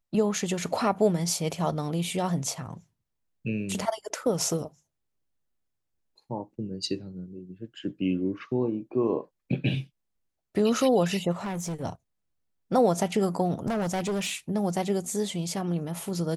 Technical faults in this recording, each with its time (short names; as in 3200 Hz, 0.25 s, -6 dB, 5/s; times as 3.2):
11.41–11.84 clipped -29 dBFS
13.67–14.33 clipped -25 dBFS